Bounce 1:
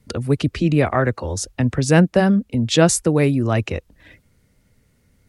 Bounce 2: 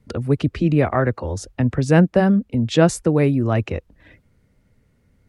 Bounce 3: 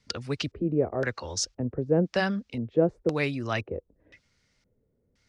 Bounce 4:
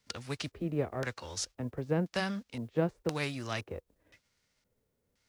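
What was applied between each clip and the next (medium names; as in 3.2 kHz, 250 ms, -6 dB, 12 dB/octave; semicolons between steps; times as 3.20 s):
treble shelf 3.2 kHz -11 dB
tilt shelf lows -9 dB; LFO low-pass square 0.97 Hz 450–5500 Hz; trim -5.5 dB
formants flattened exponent 0.6; trim -7 dB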